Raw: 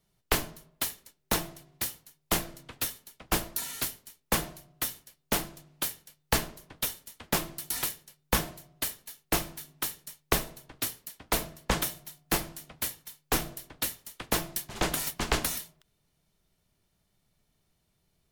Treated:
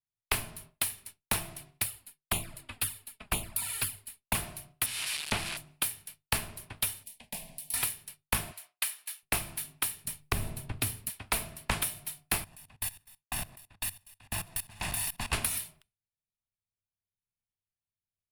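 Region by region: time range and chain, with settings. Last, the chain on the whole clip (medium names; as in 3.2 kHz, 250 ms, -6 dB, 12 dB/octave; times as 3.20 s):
1.83–4.35 s: band-stop 5.9 kHz, Q 5.8 + touch-sensitive flanger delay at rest 6.7 ms, full sweep at -25 dBFS
4.86–5.57 s: zero-crossing glitches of -18 dBFS + low-pass 3.8 kHz
7.03–7.74 s: static phaser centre 350 Hz, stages 6 + compression 2:1, threshold -54 dBFS
8.52–9.23 s: high-pass 1 kHz + treble shelf 6.3 kHz -3.5 dB
10.05–11.10 s: bass shelf 460 Hz +12 dB + compression 2:1, threshold -26 dBFS
12.44–15.33 s: comb filter that takes the minimum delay 1.1 ms + level held to a coarse grid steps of 19 dB
whole clip: expander -53 dBFS; graphic EQ with 31 bands 100 Hz +12 dB, 160 Hz -4 dB, 315 Hz -8 dB, 500 Hz -9 dB, 2.5 kHz +7 dB, 6.3 kHz -7 dB, 10 kHz +10 dB; compression 3:1, threshold -33 dBFS; trim +4 dB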